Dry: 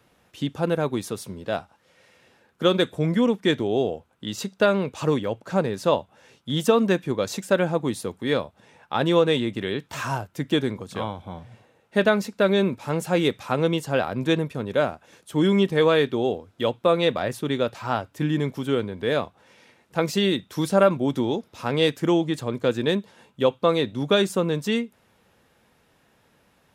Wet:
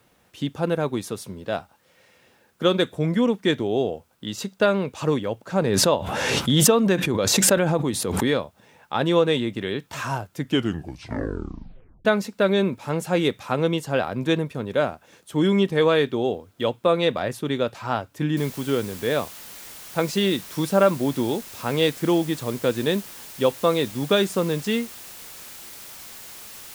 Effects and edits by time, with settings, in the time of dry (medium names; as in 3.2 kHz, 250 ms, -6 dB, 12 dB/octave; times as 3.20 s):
5.59–8.43 s: swell ahead of each attack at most 23 dB/s
10.41 s: tape stop 1.64 s
18.37 s: noise floor step -70 dB -41 dB